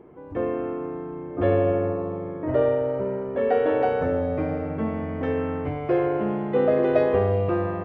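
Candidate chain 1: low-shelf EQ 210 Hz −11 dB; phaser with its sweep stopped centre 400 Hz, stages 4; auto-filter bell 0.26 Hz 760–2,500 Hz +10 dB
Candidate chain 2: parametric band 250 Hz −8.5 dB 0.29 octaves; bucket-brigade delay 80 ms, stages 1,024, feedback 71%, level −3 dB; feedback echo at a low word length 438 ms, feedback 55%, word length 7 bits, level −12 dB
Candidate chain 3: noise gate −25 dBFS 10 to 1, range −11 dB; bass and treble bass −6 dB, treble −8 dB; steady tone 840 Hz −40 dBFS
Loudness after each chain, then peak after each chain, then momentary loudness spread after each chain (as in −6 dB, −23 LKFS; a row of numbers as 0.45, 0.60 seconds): −27.0, −21.0, −25.5 LKFS; −10.5, −6.0, −8.5 dBFS; 12, 7, 16 LU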